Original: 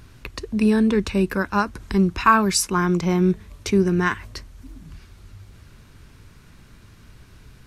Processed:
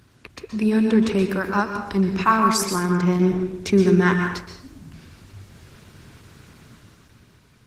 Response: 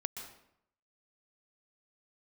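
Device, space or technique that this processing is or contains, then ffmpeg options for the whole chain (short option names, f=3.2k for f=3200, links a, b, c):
far-field microphone of a smart speaker: -filter_complex "[0:a]asettb=1/sr,asplit=3[a][b][c];[a]atrim=end=2.644[d];[b]atrim=start=2.64:end=3.82,asetpts=PTS-STARTPTS,afade=t=in:d=0.004:c=qsin,afade=t=out:st=1.176:d=0.004:c=qsin,highshelf=f=9k:g=-2.5[e];[c]atrim=start=3.816[f];[d][e]acrossfade=d=0.004:c1=hsin:c2=qsin[g];[g][f]acrossfade=d=0.004:c1=qsin:c2=hsin[h];[1:a]atrim=start_sample=2205[i];[h][i]afir=irnorm=-1:irlink=0,highpass=100,dynaudnorm=f=140:g=13:m=9dB,volume=-3dB" -ar 48000 -c:a libopus -b:a 16k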